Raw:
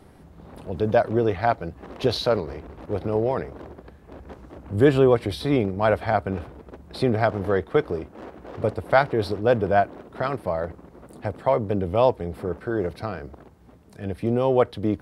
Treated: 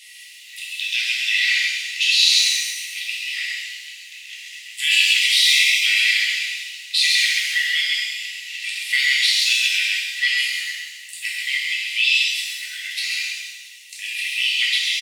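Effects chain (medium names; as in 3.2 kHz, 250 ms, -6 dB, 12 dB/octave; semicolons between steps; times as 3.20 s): rippled Chebyshev high-pass 1.9 kHz, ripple 9 dB; peaking EQ 3.6 kHz +8 dB 0.64 oct; delay 133 ms -5.5 dB; loudness maximiser +31.5 dB; pitch-shifted reverb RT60 1.2 s, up +7 st, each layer -8 dB, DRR -5 dB; trim -10 dB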